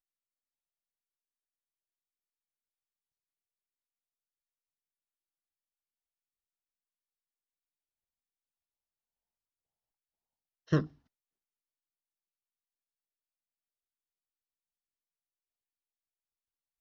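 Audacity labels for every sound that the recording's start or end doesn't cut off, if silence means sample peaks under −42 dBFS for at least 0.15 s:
10.720000	10.870000	sound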